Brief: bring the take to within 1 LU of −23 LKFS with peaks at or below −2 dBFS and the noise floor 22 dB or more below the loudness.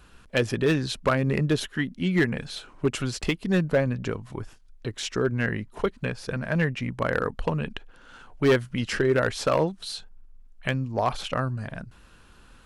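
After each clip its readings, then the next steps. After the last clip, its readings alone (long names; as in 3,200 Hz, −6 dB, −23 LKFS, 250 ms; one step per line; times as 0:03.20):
share of clipped samples 0.5%; peaks flattened at −14.5 dBFS; integrated loudness −26.5 LKFS; sample peak −14.5 dBFS; target loudness −23.0 LKFS
→ clipped peaks rebuilt −14.5 dBFS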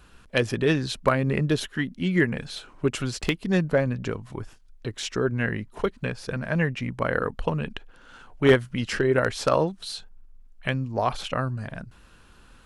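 share of clipped samples 0.0%; integrated loudness −26.0 LKFS; sample peak −5.5 dBFS; target loudness −23.0 LKFS
→ level +3 dB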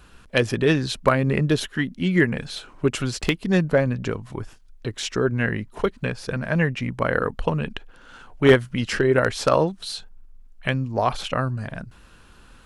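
integrated loudness −23.0 LKFS; sample peak −2.5 dBFS; background noise floor −50 dBFS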